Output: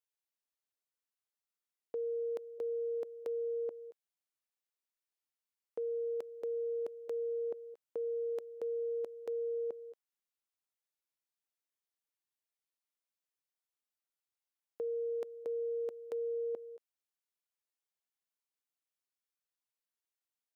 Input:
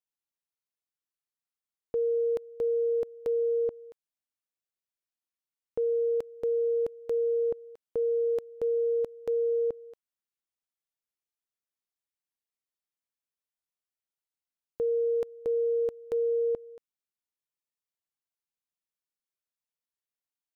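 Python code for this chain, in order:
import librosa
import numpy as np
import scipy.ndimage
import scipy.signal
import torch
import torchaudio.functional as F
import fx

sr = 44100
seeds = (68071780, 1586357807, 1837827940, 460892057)

y = scipy.signal.sosfilt(scipy.signal.butter(2, 330.0, 'highpass', fs=sr, output='sos'), x)
y = fx.level_steps(y, sr, step_db=12)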